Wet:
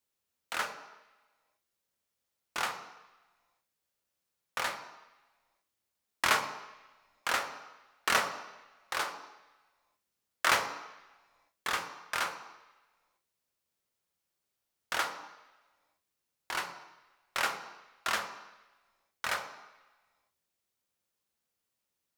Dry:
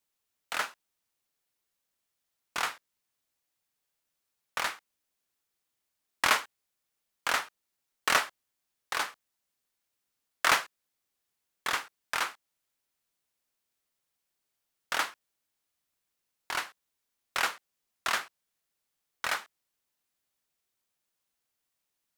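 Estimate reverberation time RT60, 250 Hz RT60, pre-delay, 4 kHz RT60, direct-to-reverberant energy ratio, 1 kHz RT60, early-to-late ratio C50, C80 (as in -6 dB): 1.1 s, 1.0 s, 7 ms, 1.3 s, 4.5 dB, 1.2 s, 8.5 dB, 11.0 dB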